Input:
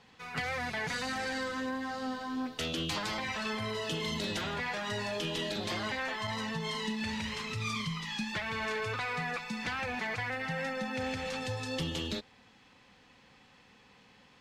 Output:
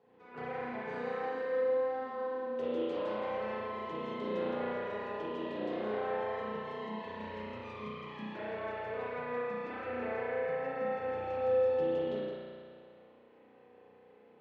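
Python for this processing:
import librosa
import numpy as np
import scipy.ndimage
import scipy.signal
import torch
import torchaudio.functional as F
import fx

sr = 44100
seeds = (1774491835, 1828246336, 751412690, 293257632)

y = fx.bandpass_q(x, sr, hz=440.0, q=2.4)
y = y + 10.0 ** (-6.5 / 20.0) * np.pad(y, (int(167 * sr / 1000.0), 0))[:len(y)]
y = fx.rev_spring(y, sr, rt60_s=2.2, pass_ms=(33,), chirp_ms=30, drr_db=-9.5)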